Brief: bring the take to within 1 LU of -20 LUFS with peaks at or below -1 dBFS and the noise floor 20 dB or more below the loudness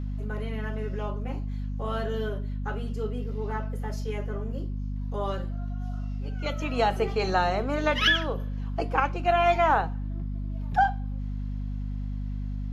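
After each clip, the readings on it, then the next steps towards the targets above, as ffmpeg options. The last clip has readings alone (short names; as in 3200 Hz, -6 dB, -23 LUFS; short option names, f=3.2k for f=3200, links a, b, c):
hum 50 Hz; harmonics up to 250 Hz; hum level -29 dBFS; loudness -29.0 LUFS; peak -10.0 dBFS; loudness target -20.0 LUFS
-> -af "bandreject=f=50:t=h:w=6,bandreject=f=100:t=h:w=6,bandreject=f=150:t=h:w=6,bandreject=f=200:t=h:w=6,bandreject=f=250:t=h:w=6"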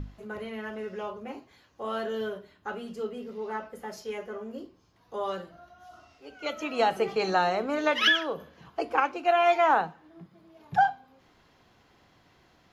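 hum none; loudness -28.5 LUFS; peak -10.5 dBFS; loudness target -20.0 LUFS
-> -af "volume=8.5dB"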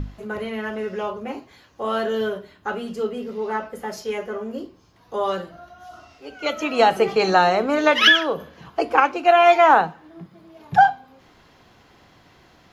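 loudness -20.0 LUFS; peak -2.0 dBFS; noise floor -54 dBFS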